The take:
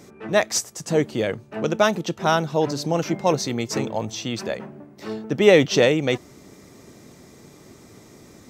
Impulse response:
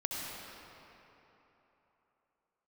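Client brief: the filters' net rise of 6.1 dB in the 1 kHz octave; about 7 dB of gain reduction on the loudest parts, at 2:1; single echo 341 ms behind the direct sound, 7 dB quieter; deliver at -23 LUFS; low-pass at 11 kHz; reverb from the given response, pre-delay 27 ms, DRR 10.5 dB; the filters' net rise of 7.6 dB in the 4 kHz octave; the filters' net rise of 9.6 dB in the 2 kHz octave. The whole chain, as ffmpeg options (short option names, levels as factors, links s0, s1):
-filter_complex "[0:a]lowpass=11000,equalizer=f=1000:t=o:g=5.5,equalizer=f=2000:t=o:g=8.5,equalizer=f=4000:t=o:g=6.5,acompressor=threshold=0.126:ratio=2,aecho=1:1:341:0.447,asplit=2[s0][s1];[1:a]atrim=start_sample=2205,adelay=27[s2];[s1][s2]afir=irnorm=-1:irlink=0,volume=0.188[s3];[s0][s3]amix=inputs=2:normalize=0,volume=0.841"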